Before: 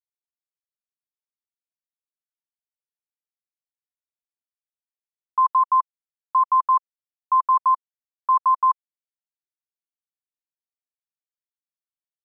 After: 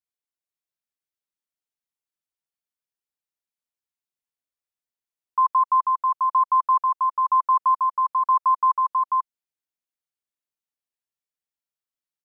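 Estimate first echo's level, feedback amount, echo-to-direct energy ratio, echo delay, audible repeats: -3.0 dB, no steady repeat, -3.0 dB, 0.49 s, 1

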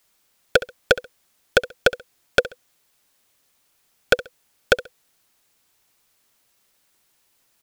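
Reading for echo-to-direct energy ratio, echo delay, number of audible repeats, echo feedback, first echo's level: -16.5 dB, 67 ms, 2, 25%, -17.0 dB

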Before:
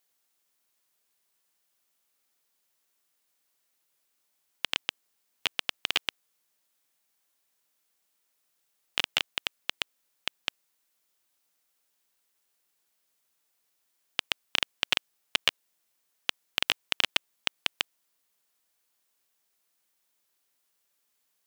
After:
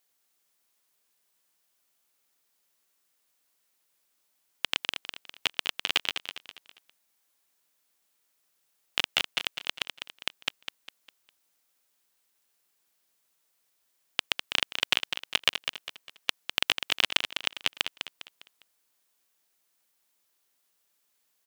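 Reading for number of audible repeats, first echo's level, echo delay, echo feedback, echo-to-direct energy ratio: 4, -8.0 dB, 0.202 s, 38%, -7.5 dB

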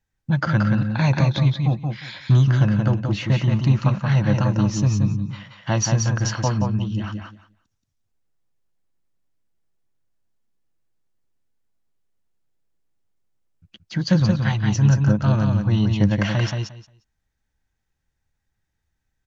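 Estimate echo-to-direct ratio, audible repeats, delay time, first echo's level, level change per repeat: -4.5 dB, 2, 0.177 s, -4.5 dB, -15.5 dB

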